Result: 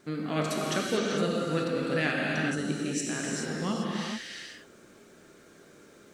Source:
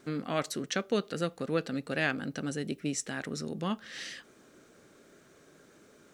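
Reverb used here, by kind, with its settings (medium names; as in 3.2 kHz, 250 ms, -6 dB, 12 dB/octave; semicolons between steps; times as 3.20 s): gated-style reverb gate 460 ms flat, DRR -3.5 dB; trim -1 dB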